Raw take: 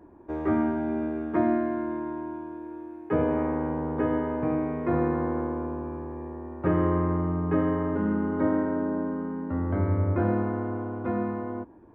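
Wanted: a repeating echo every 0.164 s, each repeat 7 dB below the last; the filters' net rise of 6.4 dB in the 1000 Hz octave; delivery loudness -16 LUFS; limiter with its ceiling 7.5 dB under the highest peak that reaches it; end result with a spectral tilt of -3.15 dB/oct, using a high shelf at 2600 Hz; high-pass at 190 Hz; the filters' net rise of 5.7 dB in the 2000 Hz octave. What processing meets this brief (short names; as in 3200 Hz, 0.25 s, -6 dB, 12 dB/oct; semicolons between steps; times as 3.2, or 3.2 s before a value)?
HPF 190 Hz; bell 1000 Hz +7 dB; bell 2000 Hz +6.5 dB; high shelf 2600 Hz -5 dB; limiter -18.5 dBFS; feedback echo 0.164 s, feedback 45%, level -7 dB; gain +11.5 dB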